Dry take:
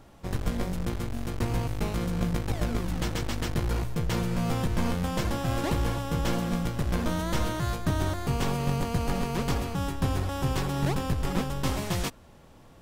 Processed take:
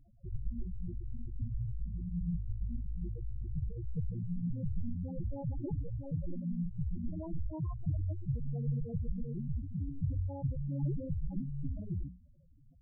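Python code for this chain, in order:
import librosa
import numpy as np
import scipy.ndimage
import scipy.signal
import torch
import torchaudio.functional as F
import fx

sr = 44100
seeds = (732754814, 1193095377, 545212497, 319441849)

y = fx.hum_notches(x, sr, base_hz=60, count=5)
y = fx.spec_topn(y, sr, count=4)
y = y * 10.0 ** (-3.5 / 20.0)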